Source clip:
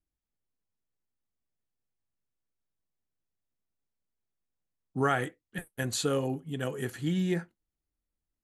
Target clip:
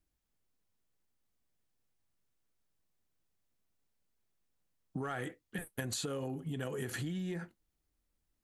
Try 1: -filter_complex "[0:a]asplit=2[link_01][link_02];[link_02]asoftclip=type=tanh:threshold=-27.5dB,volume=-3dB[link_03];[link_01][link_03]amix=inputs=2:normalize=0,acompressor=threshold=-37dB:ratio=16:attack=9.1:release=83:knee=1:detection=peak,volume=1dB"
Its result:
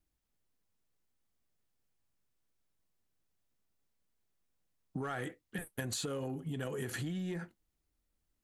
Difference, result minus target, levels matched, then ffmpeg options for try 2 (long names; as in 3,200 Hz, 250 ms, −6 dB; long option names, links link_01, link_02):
soft clipping: distortion +7 dB
-filter_complex "[0:a]asplit=2[link_01][link_02];[link_02]asoftclip=type=tanh:threshold=-20dB,volume=-3dB[link_03];[link_01][link_03]amix=inputs=2:normalize=0,acompressor=threshold=-37dB:ratio=16:attack=9.1:release=83:knee=1:detection=peak,volume=1dB"